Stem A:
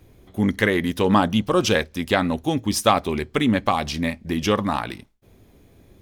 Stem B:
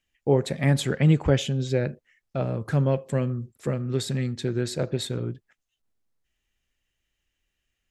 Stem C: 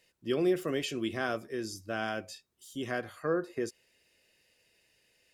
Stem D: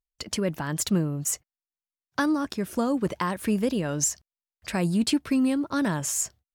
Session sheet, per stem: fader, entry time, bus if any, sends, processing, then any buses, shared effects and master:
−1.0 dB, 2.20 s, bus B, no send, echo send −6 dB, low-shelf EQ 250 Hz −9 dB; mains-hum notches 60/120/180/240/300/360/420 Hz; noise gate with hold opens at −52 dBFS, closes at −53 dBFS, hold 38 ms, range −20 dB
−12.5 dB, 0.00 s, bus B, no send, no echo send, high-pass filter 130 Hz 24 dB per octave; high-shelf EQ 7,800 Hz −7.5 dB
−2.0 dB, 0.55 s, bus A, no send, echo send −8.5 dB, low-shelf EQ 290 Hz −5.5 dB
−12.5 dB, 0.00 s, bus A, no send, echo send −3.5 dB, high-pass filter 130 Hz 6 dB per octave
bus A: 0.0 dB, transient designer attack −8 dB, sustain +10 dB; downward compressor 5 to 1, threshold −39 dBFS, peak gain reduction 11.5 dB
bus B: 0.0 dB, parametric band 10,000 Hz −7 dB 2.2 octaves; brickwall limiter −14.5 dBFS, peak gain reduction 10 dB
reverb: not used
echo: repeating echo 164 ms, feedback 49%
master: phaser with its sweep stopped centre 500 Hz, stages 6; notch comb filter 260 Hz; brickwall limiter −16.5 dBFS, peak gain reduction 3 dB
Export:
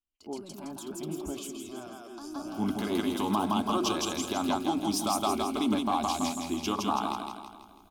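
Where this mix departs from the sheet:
stem B: missing high-pass filter 130 Hz 24 dB per octave
master: missing notch comb filter 260 Hz

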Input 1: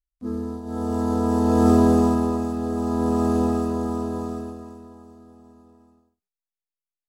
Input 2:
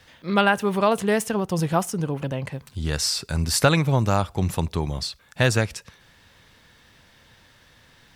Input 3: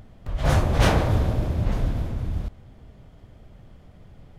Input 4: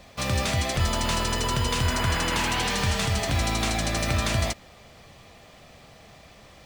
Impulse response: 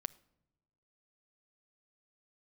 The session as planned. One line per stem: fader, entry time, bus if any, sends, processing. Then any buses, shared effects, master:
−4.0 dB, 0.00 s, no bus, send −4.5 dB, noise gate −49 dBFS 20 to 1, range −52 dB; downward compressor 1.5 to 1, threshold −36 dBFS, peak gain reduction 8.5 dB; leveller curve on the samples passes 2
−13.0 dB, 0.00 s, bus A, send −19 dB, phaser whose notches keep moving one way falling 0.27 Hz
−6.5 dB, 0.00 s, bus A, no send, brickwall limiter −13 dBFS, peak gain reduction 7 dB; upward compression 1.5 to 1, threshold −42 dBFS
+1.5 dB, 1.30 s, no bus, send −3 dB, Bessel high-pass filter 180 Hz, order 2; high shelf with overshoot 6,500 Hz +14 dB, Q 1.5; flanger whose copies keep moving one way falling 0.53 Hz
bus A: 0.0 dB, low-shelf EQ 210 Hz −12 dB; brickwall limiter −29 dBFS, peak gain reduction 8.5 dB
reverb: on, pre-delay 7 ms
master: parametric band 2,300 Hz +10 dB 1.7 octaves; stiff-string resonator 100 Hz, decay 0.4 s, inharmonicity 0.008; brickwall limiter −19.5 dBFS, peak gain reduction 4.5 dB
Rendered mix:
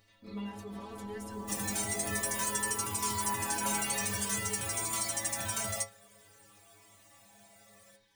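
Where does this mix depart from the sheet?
stem 1 −4.0 dB → −14.0 dB
stem 2 −13.0 dB → −2.5 dB
master: missing parametric band 2,300 Hz +10 dB 1.7 octaves

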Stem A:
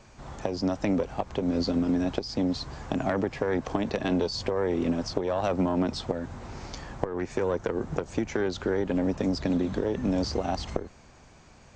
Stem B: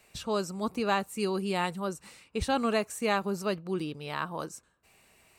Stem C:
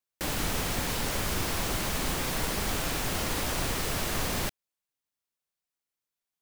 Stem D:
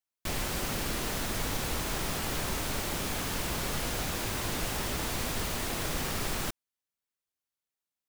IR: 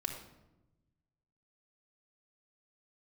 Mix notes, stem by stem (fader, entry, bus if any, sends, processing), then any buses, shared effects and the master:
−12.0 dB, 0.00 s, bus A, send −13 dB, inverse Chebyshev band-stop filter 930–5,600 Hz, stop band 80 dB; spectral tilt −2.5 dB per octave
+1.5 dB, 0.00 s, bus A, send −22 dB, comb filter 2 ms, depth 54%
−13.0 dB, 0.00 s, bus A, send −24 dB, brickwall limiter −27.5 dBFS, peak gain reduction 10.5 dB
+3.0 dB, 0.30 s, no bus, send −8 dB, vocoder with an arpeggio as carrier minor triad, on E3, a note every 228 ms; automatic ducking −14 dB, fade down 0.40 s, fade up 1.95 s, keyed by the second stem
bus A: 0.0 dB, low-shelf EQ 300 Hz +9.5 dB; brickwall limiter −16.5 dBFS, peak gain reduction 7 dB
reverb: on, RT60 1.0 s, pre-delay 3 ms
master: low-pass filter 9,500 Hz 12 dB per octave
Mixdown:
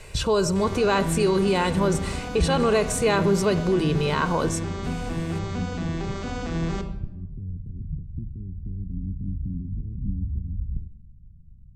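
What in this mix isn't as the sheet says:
stem B +1.5 dB → +12.5 dB
reverb return +6.5 dB

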